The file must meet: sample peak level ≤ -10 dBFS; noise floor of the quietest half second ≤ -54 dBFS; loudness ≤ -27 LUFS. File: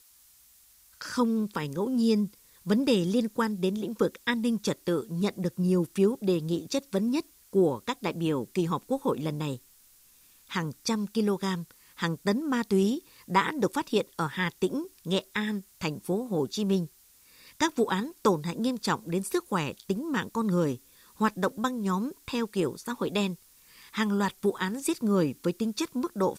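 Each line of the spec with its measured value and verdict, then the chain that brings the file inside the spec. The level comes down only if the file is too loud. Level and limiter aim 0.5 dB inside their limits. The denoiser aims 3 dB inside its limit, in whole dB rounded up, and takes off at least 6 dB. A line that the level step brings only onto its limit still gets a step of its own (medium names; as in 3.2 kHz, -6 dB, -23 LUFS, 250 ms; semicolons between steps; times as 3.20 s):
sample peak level -11.0 dBFS: pass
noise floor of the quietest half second -59 dBFS: pass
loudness -29.0 LUFS: pass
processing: none needed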